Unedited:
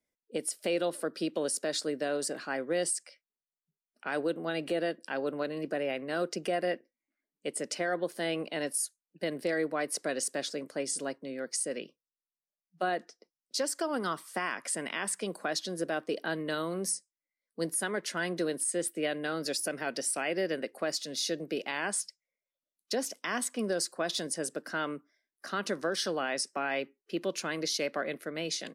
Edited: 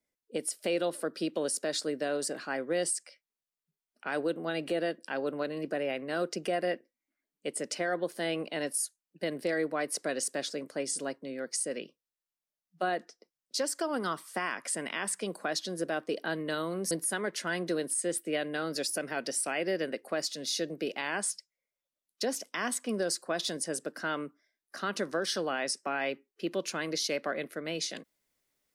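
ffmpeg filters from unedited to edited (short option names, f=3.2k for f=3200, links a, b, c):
-filter_complex "[0:a]asplit=2[a][b];[a]atrim=end=16.912[c];[b]atrim=start=17.608[d];[c][d]acrossfade=d=0.004:c1=hsin:c2=hsin"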